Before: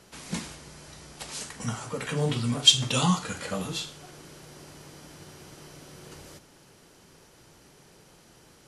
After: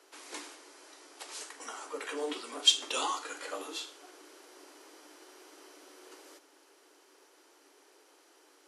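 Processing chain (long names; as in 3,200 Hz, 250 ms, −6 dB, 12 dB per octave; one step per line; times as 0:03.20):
Chebyshev high-pass with heavy ripple 280 Hz, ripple 3 dB
level −3.5 dB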